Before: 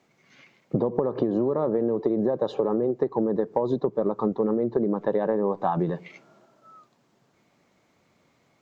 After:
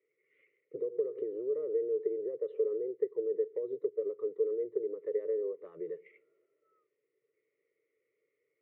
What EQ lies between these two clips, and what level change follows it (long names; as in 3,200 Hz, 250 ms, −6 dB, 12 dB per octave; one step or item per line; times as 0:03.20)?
pair of resonant band-passes 920 Hz, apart 2.1 octaves
high-frequency loss of the air 370 metres
phaser with its sweep stopped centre 1,100 Hz, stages 8
−2.0 dB